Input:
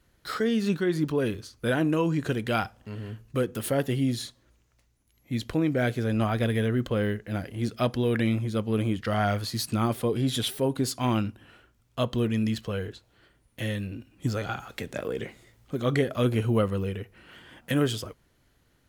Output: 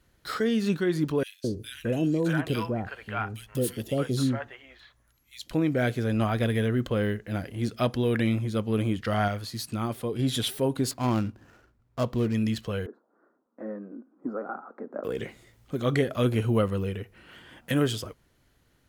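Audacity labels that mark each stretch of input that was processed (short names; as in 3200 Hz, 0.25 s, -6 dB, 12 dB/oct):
1.230000	5.510000	three bands offset in time highs, lows, mids 0.21/0.62 s, splits 710/2400 Hz
9.280000	10.190000	gain -4.5 dB
10.910000	12.350000	median filter over 15 samples
12.860000	15.040000	elliptic band-pass 230–1300 Hz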